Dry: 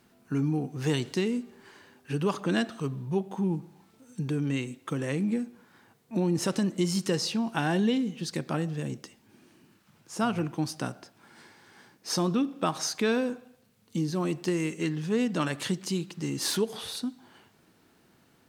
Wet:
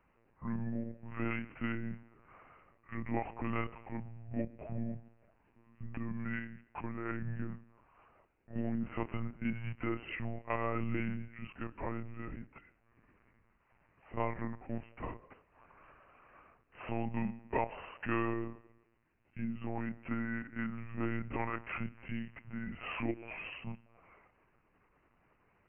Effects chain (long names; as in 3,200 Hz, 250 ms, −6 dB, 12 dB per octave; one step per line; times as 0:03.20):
one-pitch LPC vocoder at 8 kHz 160 Hz
low-shelf EQ 480 Hz −9 dB
speed change −28%
level −2.5 dB